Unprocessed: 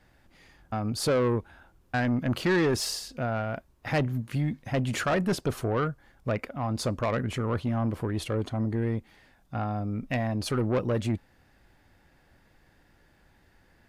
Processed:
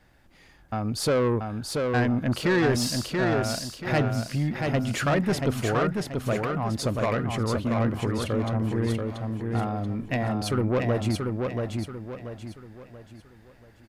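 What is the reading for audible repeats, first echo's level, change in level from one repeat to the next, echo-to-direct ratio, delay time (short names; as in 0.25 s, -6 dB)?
4, -4.0 dB, -8.5 dB, -3.5 dB, 0.683 s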